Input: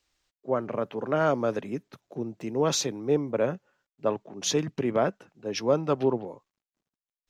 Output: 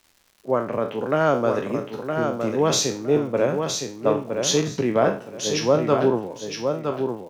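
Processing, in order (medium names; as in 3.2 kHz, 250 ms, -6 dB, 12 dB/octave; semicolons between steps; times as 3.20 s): spectral sustain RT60 0.37 s; crackle 210 per s -47 dBFS; feedback delay 964 ms, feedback 23%, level -5.5 dB; trim +4 dB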